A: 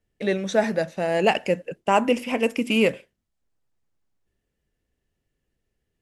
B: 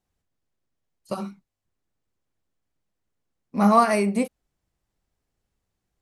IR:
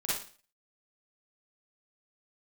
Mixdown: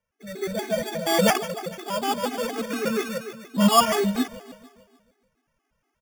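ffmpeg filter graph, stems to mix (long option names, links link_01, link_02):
-filter_complex "[0:a]bandreject=frequency=3100:width=12,volume=1.5dB,asplit=2[link_01][link_02];[link_02]volume=-13dB[link_03];[1:a]highpass=150,highshelf=frequency=5400:width_type=q:width=3:gain=7.5,volume=-2.5dB,asplit=3[link_04][link_05][link_06];[link_05]volume=-18.5dB[link_07];[link_06]apad=whole_len=265143[link_08];[link_01][link_08]sidechaingate=range=-16dB:threshold=-53dB:ratio=16:detection=peak[link_09];[link_03][link_07]amix=inputs=2:normalize=0,aecho=0:1:148|296|444|592|740|888|1036|1184:1|0.55|0.303|0.166|0.0915|0.0503|0.0277|0.0152[link_10];[link_09][link_04][link_10]amix=inputs=3:normalize=0,dynaudnorm=framelen=210:gausssize=3:maxgain=8dB,acrusher=samples=11:mix=1:aa=0.000001,afftfilt=real='re*gt(sin(2*PI*4.2*pts/sr)*(1-2*mod(floor(b*sr/1024/220),2)),0)':imag='im*gt(sin(2*PI*4.2*pts/sr)*(1-2*mod(floor(b*sr/1024/220),2)),0)':win_size=1024:overlap=0.75"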